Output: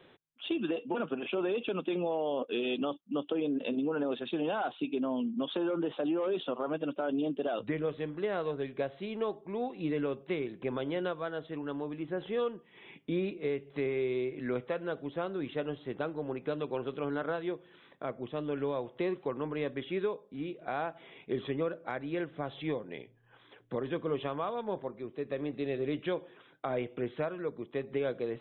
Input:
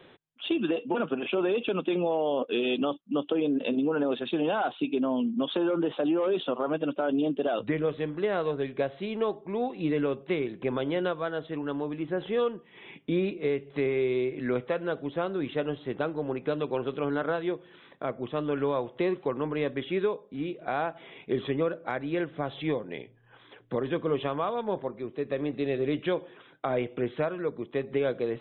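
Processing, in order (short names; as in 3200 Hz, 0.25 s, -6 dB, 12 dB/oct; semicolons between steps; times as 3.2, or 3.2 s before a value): 18.23–18.85 bell 1200 Hz -4 dB; gain -5 dB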